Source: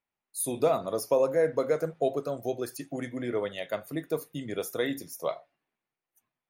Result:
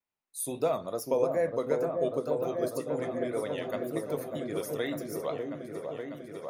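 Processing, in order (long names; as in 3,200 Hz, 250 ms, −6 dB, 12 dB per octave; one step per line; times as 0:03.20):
tape wow and flutter 85 cents
echo whose low-pass opens from repeat to repeat 596 ms, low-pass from 750 Hz, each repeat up 1 octave, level −3 dB
level −3.5 dB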